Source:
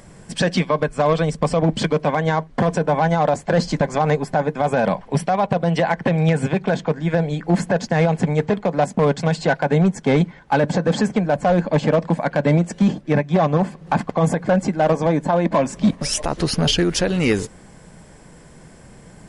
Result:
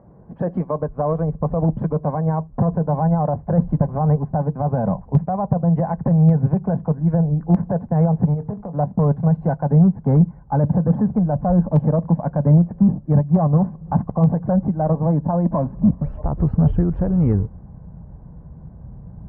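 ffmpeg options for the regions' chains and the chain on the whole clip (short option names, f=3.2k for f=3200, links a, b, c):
-filter_complex "[0:a]asettb=1/sr,asplit=3[a][b][c];[a]atrim=end=8.344[d];[b]atrim=start=8.34:end=8.75,asetpts=PTS-STARTPTS,afade=t=in:d=0.004:c=qsin,afade=t=out:st=0.406:d=0.004:c=qsin,acompressor=threshold=-24dB:ratio=4:attack=3.2:release=140:knee=1:detection=peak,asplit=2[e][f];[f]adelay=24,volume=-12.5dB[g];[e][g]amix=inputs=2:normalize=0,atrim=end_sample=18081[h];[c]atrim=start=8.746[i];[d][h]acrossfade=d=0.004:c1=hsin:c2=qsin[j];[j][i]acrossfade=d=0.004:c1=qsin:c2=hsin,lowpass=f=1k:w=0.5412,lowpass=f=1k:w=1.3066,asubboost=boost=9:cutoff=120,highpass=46,volume=-2.5dB"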